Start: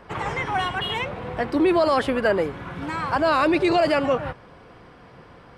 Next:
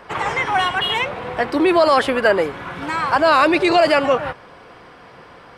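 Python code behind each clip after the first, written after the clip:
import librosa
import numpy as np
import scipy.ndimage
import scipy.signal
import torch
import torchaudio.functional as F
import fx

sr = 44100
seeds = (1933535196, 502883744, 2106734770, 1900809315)

y = fx.low_shelf(x, sr, hz=300.0, db=-11.0)
y = F.gain(torch.from_numpy(y), 7.5).numpy()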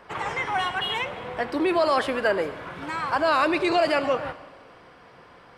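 y = fx.rev_schroeder(x, sr, rt60_s=1.5, comb_ms=30, drr_db=14.0)
y = F.gain(torch.from_numpy(y), -7.5).numpy()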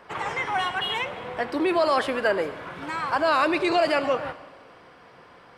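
y = fx.low_shelf(x, sr, hz=82.0, db=-6.0)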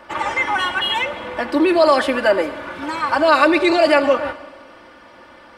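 y = x + 0.79 * np.pad(x, (int(3.4 * sr / 1000.0), 0))[:len(x)]
y = F.gain(torch.from_numpy(y), 5.0).numpy()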